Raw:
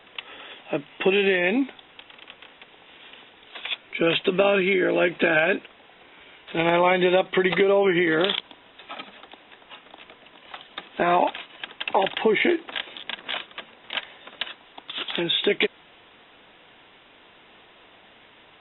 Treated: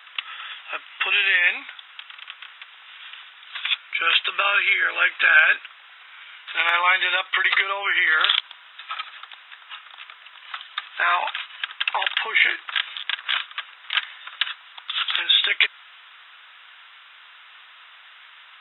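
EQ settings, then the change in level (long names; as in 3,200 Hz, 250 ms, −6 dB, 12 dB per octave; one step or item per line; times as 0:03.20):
high-pass with resonance 1,300 Hz, resonance Q 2.9
high-shelf EQ 2,200 Hz +11 dB
−2.5 dB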